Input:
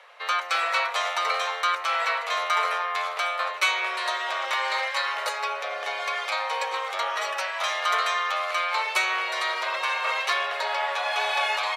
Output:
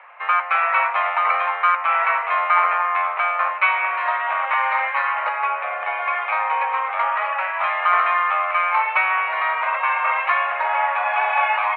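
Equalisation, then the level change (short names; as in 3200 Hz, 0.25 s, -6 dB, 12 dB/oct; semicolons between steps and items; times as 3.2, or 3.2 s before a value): resonant high-pass 850 Hz, resonance Q 1.6; elliptic low-pass 2500 Hz, stop band 80 dB; +4.5 dB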